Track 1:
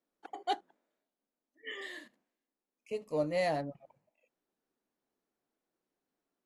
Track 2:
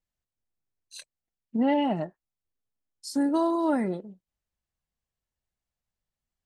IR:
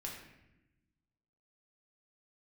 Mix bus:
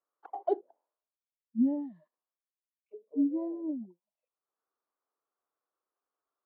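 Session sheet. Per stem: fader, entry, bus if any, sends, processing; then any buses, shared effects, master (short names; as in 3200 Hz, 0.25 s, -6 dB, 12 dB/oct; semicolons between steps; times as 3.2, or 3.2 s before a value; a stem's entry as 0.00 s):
+2.0 dB, 0.00 s, no send, bell 460 Hz +12.5 dB 1.9 oct; auto-wah 390–1200 Hz, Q 4.7, down, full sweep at -22 dBFS; auto duck -22 dB, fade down 0.85 s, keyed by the second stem
-3.0 dB, 0.00 s, no send, spectral expander 4:1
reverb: off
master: high shelf 4800 Hz +9 dB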